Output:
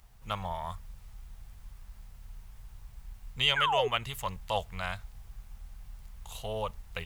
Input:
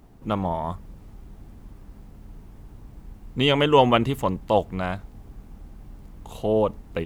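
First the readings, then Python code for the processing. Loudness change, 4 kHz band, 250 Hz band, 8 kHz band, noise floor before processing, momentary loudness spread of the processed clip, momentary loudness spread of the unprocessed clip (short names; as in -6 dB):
-9.0 dB, -2.0 dB, -21.5 dB, n/a, -48 dBFS, 25 LU, 15 LU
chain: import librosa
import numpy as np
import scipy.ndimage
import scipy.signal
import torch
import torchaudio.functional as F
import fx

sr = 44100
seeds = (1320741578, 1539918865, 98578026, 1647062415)

y = fx.tone_stack(x, sr, knobs='10-0-10')
y = fx.rider(y, sr, range_db=3, speed_s=0.5)
y = fx.spec_paint(y, sr, seeds[0], shape='fall', start_s=3.56, length_s=0.32, low_hz=390.0, high_hz=1700.0, level_db=-28.0)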